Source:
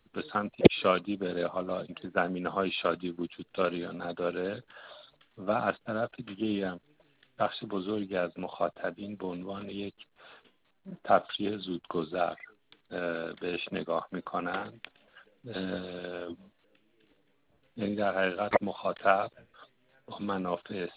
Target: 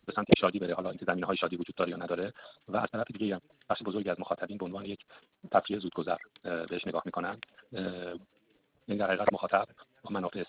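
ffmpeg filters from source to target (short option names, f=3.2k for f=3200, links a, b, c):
-af "atempo=2,highpass=41"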